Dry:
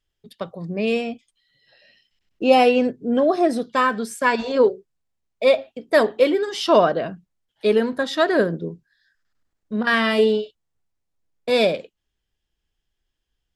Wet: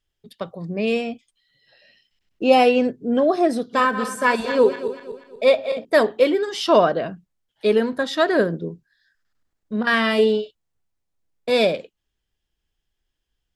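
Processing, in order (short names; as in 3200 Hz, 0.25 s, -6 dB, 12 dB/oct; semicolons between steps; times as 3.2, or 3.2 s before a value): 3.56–5.85 regenerating reverse delay 0.12 s, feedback 62%, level -10 dB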